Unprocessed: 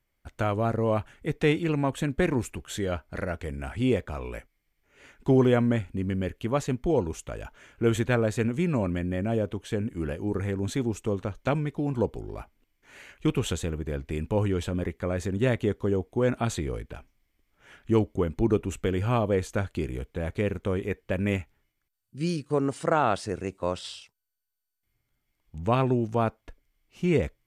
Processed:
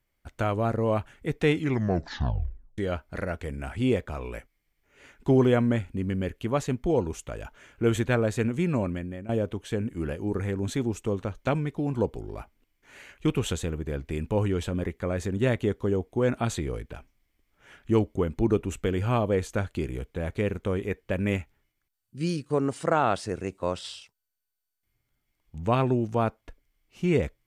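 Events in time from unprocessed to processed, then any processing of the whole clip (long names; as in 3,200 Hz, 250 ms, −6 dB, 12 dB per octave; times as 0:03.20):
0:01.52: tape stop 1.26 s
0:08.78–0:09.29: fade out, to −15 dB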